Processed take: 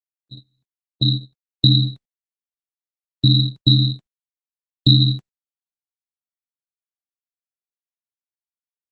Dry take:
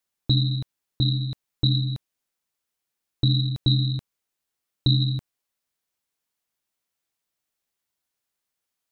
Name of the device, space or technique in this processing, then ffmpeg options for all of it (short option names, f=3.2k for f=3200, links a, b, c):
video call: -af "highpass=f=130:w=0.5412,highpass=f=130:w=1.3066,dynaudnorm=f=110:g=17:m=15.5dB,agate=range=-43dB:threshold=-17dB:ratio=16:detection=peak" -ar 48000 -c:a libopus -b:a 20k